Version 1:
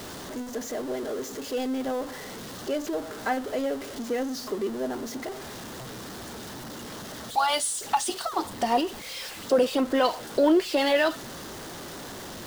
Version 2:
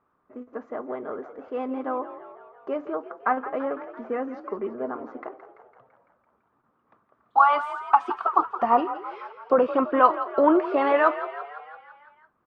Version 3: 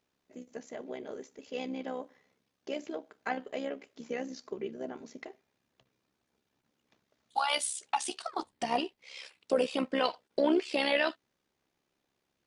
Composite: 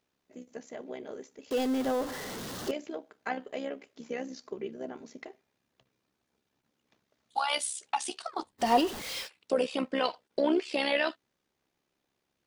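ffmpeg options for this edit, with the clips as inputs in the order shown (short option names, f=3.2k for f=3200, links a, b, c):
-filter_complex "[0:a]asplit=2[a][b];[2:a]asplit=3[c][d][e];[c]atrim=end=1.512[f];[a]atrim=start=1.508:end=2.712[g];[d]atrim=start=2.708:end=8.68[h];[b]atrim=start=8.58:end=9.29[i];[e]atrim=start=9.19[j];[f][g]acrossfade=d=0.004:c1=hsin:c2=hsin[k];[k][h]acrossfade=d=0.004:c1=hsin:c2=hsin[l];[l][i]acrossfade=d=0.1:c1=tri:c2=tri[m];[m][j]acrossfade=d=0.1:c1=tri:c2=tri"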